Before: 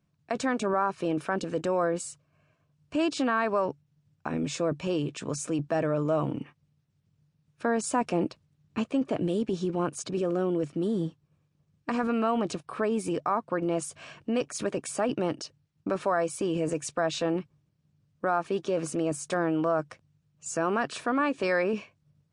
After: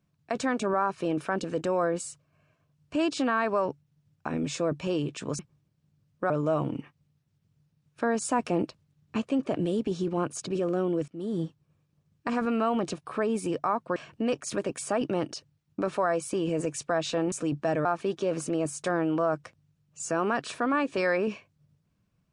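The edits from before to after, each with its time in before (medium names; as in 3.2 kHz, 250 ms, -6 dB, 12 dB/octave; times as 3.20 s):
5.39–5.92 s: swap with 17.40–18.31 s
10.70–11.03 s: fade in, from -22.5 dB
13.58–14.04 s: delete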